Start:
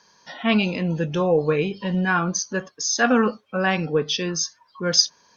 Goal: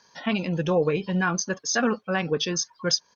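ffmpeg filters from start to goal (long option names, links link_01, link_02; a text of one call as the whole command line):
ffmpeg -i in.wav -af "atempo=1.7,alimiter=limit=-10.5dB:level=0:latency=1:release=373,volume=-1dB" out.wav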